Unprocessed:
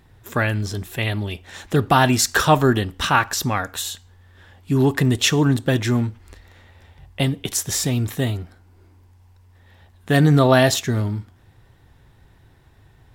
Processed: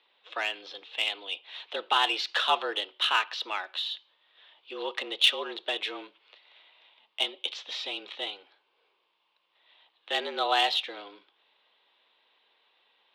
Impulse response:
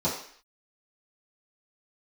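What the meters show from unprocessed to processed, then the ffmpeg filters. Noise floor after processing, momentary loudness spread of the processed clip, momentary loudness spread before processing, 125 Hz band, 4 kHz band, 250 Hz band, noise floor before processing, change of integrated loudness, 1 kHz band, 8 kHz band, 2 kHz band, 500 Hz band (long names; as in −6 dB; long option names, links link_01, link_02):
−73 dBFS, 15 LU, 12 LU, below −40 dB, −0.5 dB, −26.0 dB, −53 dBFS, −9.5 dB, −8.0 dB, −22.5 dB, −7.5 dB, −14.5 dB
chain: -filter_complex "[0:a]acrossover=split=470 2600:gain=0.178 1 0.251[link_01][link_02][link_03];[link_01][link_02][link_03]amix=inputs=3:normalize=0,highpass=frequency=220:width_type=q:width=0.5412,highpass=frequency=220:width_type=q:width=1.307,lowpass=frequency=3500:width_type=q:width=0.5176,lowpass=frequency=3500:width_type=q:width=0.7071,lowpass=frequency=3500:width_type=q:width=1.932,afreqshift=94,aexciter=amount=5.6:drive=9.8:freq=2800,volume=-8.5dB"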